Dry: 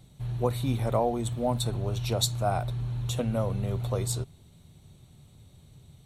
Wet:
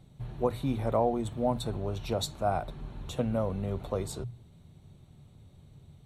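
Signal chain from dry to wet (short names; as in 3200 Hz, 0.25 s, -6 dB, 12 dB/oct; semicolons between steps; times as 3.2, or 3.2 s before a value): high shelf 3100 Hz -11 dB; notches 60/120 Hz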